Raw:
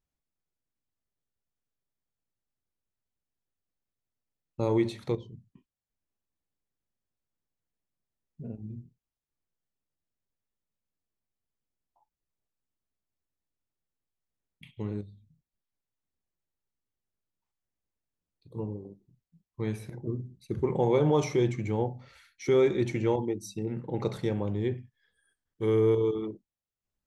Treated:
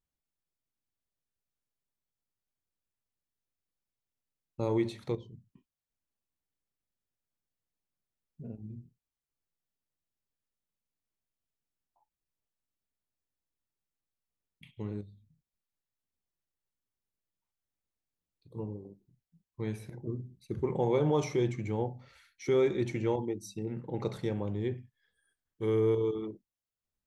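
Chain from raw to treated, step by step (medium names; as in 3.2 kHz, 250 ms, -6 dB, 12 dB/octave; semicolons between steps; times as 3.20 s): 18.80–20.05 s: band-stop 1.2 kHz, Q 13; trim -3.5 dB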